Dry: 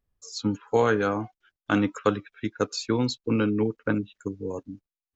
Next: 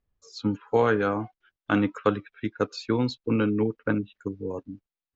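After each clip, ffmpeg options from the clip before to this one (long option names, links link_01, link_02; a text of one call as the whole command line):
ffmpeg -i in.wav -af "lowpass=3700" out.wav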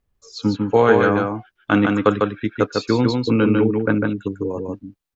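ffmpeg -i in.wav -af "aecho=1:1:150:0.668,volume=6.5dB" out.wav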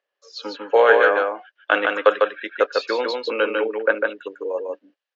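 ffmpeg -i in.wav -af "highpass=frequency=450:width=0.5412,highpass=frequency=450:width=1.3066,equalizer=frequency=560:width_type=q:width=4:gain=9,equalizer=frequency=1700:width_type=q:width=4:gain=9,equalizer=frequency=2900:width_type=q:width=4:gain=7,lowpass=frequency=5600:width=0.5412,lowpass=frequency=5600:width=1.3066,volume=-1dB" out.wav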